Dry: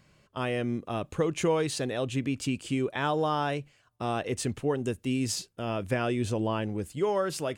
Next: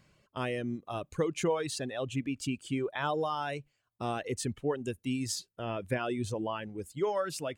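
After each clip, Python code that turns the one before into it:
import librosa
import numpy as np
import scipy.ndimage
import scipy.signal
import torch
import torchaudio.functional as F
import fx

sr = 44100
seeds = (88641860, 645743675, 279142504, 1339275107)

y = fx.dereverb_blind(x, sr, rt60_s=1.9)
y = F.gain(torch.from_numpy(y), -2.5).numpy()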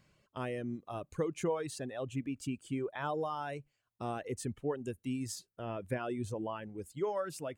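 y = fx.dynamic_eq(x, sr, hz=3800.0, q=0.74, threshold_db=-54.0, ratio=4.0, max_db=-7)
y = F.gain(torch.from_numpy(y), -3.5).numpy()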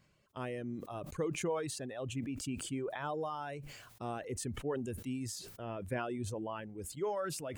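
y = fx.sustainer(x, sr, db_per_s=44.0)
y = F.gain(torch.from_numpy(y), -2.5).numpy()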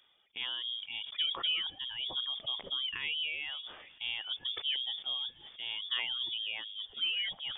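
y = fx.freq_invert(x, sr, carrier_hz=3500)
y = fx.echo_wet_highpass(y, sr, ms=483, feedback_pct=59, hz=2600.0, wet_db=-22)
y = F.gain(torch.from_numpy(y), 2.0).numpy()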